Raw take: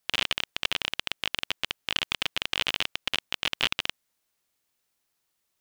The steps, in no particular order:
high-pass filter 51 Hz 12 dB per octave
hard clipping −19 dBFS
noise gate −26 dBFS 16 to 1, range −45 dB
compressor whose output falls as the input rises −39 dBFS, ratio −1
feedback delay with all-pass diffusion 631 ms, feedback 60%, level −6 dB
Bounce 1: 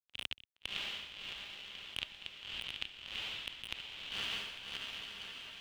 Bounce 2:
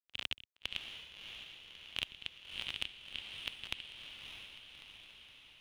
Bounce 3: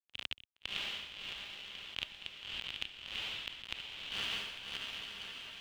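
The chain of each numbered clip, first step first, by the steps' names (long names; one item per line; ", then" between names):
high-pass filter, then noise gate, then feedback delay with all-pass diffusion, then hard clipping, then compressor whose output falls as the input rises
high-pass filter, then noise gate, then compressor whose output falls as the input rises, then hard clipping, then feedback delay with all-pass diffusion
high-pass filter, then noise gate, then feedback delay with all-pass diffusion, then compressor whose output falls as the input rises, then hard clipping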